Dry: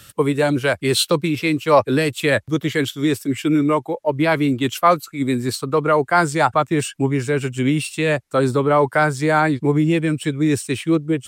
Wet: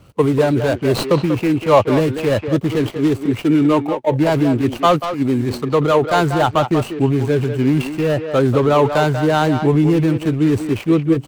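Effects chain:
running median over 25 samples
transient designer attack +1 dB, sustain +7 dB
far-end echo of a speakerphone 190 ms, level −7 dB
level +2.5 dB

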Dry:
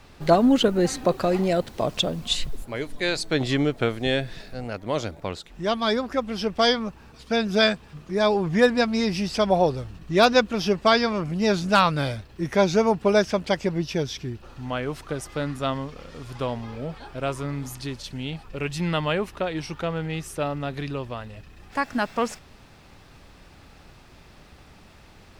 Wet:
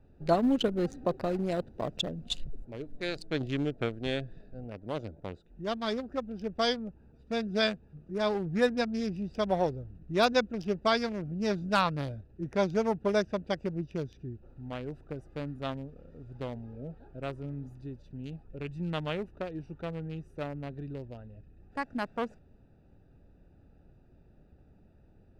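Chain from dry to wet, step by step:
adaptive Wiener filter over 41 samples
level −7.5 dB

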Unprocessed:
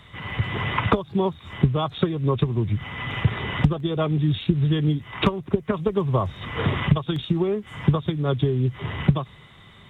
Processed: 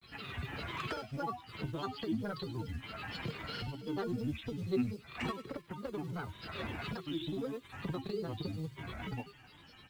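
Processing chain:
high-shelf EQ 2,700 Hz +4 dB
in parallel at +2 dB: downward compressor 16 to 1, threshold −31 dBFS, peak gain reduction 21 dB
on the sum: log-companded quantiser 6 bits
soft clipping −14 dBFS, distortion −12 dB
tuned comb filter 320 Hz, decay 0.34 s, harmonics odd, mix 90%
granular cloud, spray 36 ms, pitch spread up and down by 7 semitones
delay with a high-pass on its return 98 ms, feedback 56%, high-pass 2,900 Hz, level −12 dB
level +1 dB

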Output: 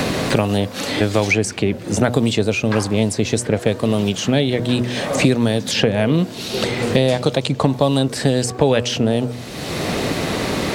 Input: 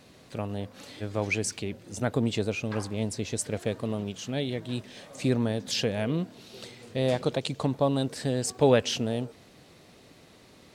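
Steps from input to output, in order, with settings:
hum removal 122 Hz, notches 11
boost into a limiter +11.5 dB
multiband upward and downward compressor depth 100%

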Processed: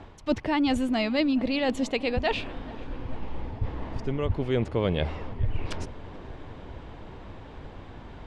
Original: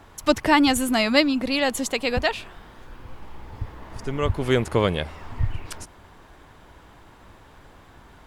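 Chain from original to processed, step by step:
low-pass filter 3,200 Hz 12 dB per octave
parametric band 1,400 Hz −7.5 dB 1.4 octaves
reversed playback
downward compressor 4 to 1, threshold −31 dBFS, peak gain reduction 14.5 dB
reversed playback
feedback echo with a low-pass in the loop 435 ms, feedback 82%, low-pass 1,900 Hz, level −20 dB
level +7 dB

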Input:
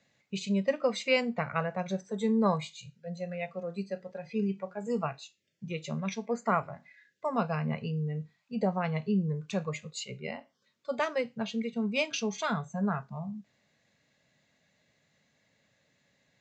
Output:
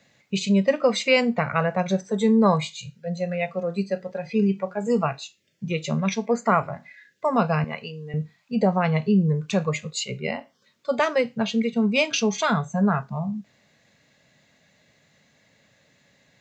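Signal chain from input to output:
0:07.64–0:08.14: high-pass filter 970 Hz 6 dB per octave
in parallel at −2.5 dB: brickwall limiter −23.5 dBFS, peak gain reduction 10 dB
on the sum: level +5 dB

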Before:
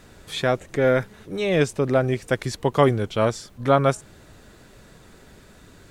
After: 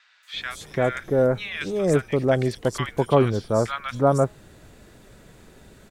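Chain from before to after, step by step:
pitch vibrato 1.7 Hz 16 cents
three-band delay without the direct sound mids, highs, lows 230/340 ms, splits 1,300/4,900 Hz

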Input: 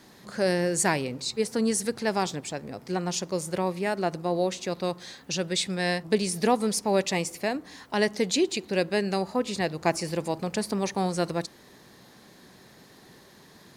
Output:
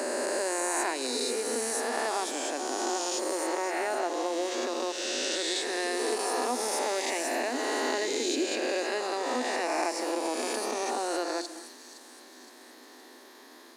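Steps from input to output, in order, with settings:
peak hold with a rise ahead of every peak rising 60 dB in 2.53 s
downward compressor 4 to 1, threshold −25 dBFS, peak gain reduction 9 dB
Chebyshev high-pass with heavy ripple 240 Hz, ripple 3 dB
delay with a high-pass on its return 516 ms, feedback 50%, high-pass 5,300 Hz, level −8 dB
on a send at −13 dB: convolution reverb, pre-delay 60 ms

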